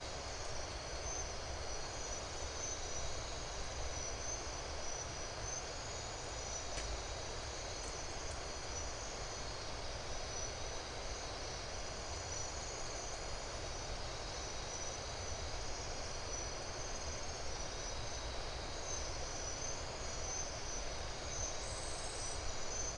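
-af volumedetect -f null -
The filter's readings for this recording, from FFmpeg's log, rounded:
mean_volume: -42.6 dB
max_volume: -27.7 dB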